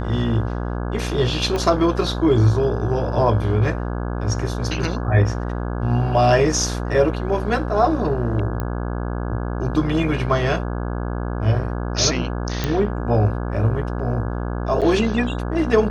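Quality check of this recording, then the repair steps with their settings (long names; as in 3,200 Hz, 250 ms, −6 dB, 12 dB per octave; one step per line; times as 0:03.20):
mains buzz 60 Hz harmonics 28 −25 dBFS
0:01.56: click −12 dBFS
0:08.60: click −13 dBFS
0:12.64: click −8 dBFS
0:14.81–0:14.82: drop-out 7.6 ms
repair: click removal
hum removal 60 Hz, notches 28
repair the gap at 0:14.81, 7.6 ms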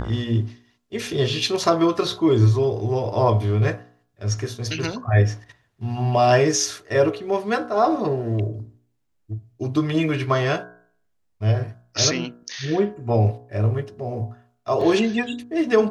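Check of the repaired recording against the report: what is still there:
0:01.56: click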